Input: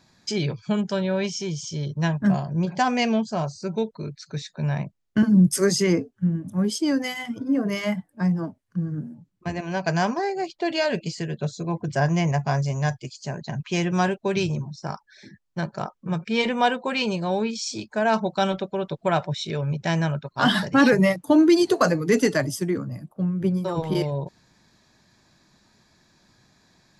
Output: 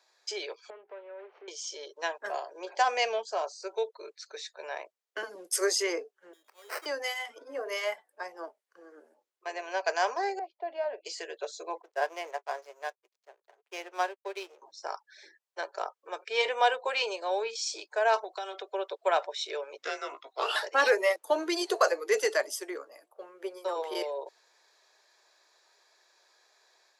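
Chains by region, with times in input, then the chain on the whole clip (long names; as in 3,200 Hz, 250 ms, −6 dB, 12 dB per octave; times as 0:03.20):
0:00.70–0:01.48: running median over 25 samples + downward compressor, threshold −35 dBFS + low-pass filter 2,400 Hz 24 dB per octave
0:06.33–0:06.86: first-order pre-emphasis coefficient 0.9 + sample-rate reduction 3,500 Hz
0:10.39–0:11.05: Chebyshev high-pass with heavy ripple 190 Hz, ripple 9 dB + head-to-tape spacing loss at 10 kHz 41 dB
0:11.82–0:14.62: high-shelf EQ 7,000 Hz −4 dB + slack as between gear wheels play −30.5 dBFS + expander for the loud parts 2.5 to 1, over −36 dBFS
0:18.24–0:18.72: comb filter 2.8 ms, depth 56% + downward compressor 16 to 1, threshold −28 dBFS
0:19.78–0:20.56: downward compressor 2.5 to 1, threshold −23 dBFS + frequency shifter −290 Hz + double-tracking delay 17 ms −7.5 dB
whole clip: Butterworth high-pass 410 Hz 48 dB per octave; automatic gain control gain up to 3.5 dB; level −6.5 dB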